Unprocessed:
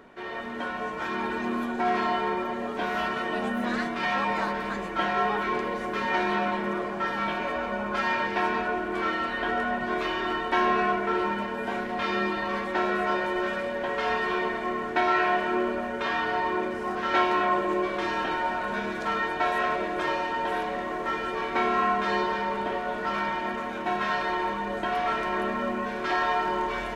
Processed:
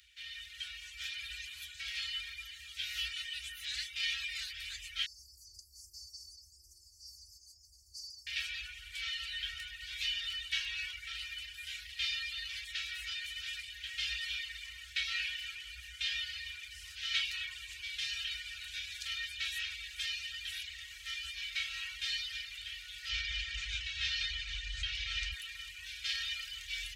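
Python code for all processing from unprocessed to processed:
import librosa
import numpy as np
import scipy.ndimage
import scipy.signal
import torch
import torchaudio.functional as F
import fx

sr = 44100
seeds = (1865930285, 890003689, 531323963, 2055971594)

y = fx.chain(x, sr, fx.brickwall_bandstop(low_hz=660.0, high_hz=4400.0),
    fx.robotise(hz=346.0), at=(5.06, 8.27))
y = fx.chain(y, sr, fx.lowpass(hz=7000.0, slope=24),
    fx.low_shelf(hz=200.0, db=11.5),
    fx.env_flatten(amount_pct=100), at=(23.09, 25.32))
y = scipy.signal.sosfilt(scipy.signal.cheby2(4, 60, [170.0, 1000.0], 'bandstop', fs=sr, output='sos'), y)
y = fx.dereverb_blind(y, sr, rt60_s=0.59)
y = scipy.signal.sosfilt(scipy.signal.butter(4, 62.0, 'highpass', fs=sr, output='sos'), y)
y = F.gain(torch.from_numpy(y), 6.5).numpy()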